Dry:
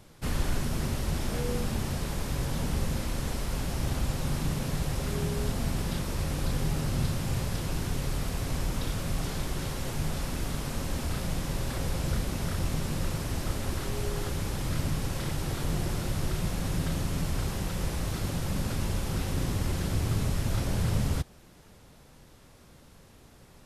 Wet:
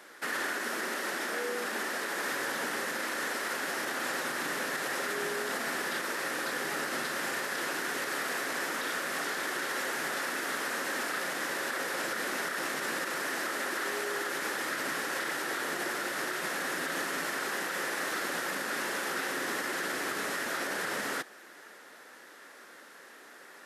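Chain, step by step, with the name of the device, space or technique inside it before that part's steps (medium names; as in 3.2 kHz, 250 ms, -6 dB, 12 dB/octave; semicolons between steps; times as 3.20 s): laptop speaker (high-pass 310 Hz 24 dB/octave; peaking EQ 1.4 kHz +7 dB 0.56 oct; peaking EQ 1.8 kHz +11 dB 0.42 oct; peak limiter -27.5 dBFS, peak gain reduction 8.5 dB); 0.52–2.23 s: elliptic high-pass 170 Hz; trim +3.5 dB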